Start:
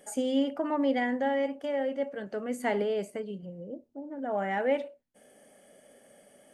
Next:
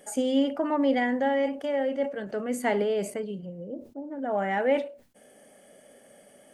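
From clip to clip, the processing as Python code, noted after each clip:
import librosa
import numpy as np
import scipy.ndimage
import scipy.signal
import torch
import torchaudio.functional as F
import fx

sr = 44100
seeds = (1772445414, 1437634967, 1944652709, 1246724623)

y = fx.sustainer(x, sr, db_per_s=130.0)
y = F.gain(torch.from_numpy(y), 3.0).numpy()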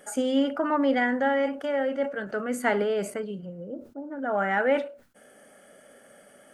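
y = fx.peak_eq(x, sr, hz=1400.0, db=12.0, octaves=0.51)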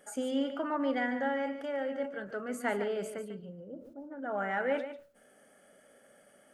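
y = x + 10.0 ** (-10.0 / 20.0) * np.pad(x, (int(146 * sr / 1000.0), 0))[:len(x)]
y = F.gain(torch.from_numpy(y), -8.0).numpy()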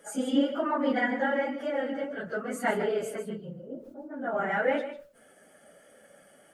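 y = fx.phase_scramble(x, sr, seeds[0], window_ms=50)
y = F.gain(torch.from_numpy(y), 4.5).numpy()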